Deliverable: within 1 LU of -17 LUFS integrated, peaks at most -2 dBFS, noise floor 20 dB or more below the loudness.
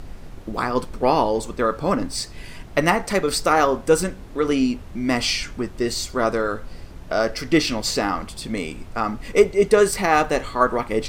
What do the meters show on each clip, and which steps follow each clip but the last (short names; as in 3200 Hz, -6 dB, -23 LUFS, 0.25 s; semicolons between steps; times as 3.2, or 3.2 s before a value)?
noise floor -39 dBFS; noise floor target -42 dBFS; loudness -21.5 LUFS; peak -2.0 dBFS; loudness target -17.0 LUFS
-> noise print and reduce 6 dB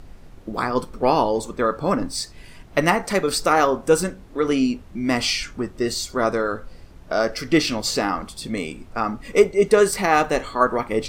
noise floor -45 dBFS; loudness -21.5 LUFS; peak -2.0 dBFS; loudness target -17.0 LUFS
-> gain +4.5 dB; limiter -2 dBFS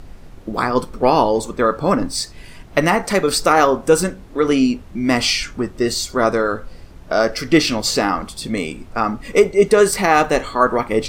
loudness -17.5 LUFS; peak -2.0 dBFS; noise floor -40 dBFS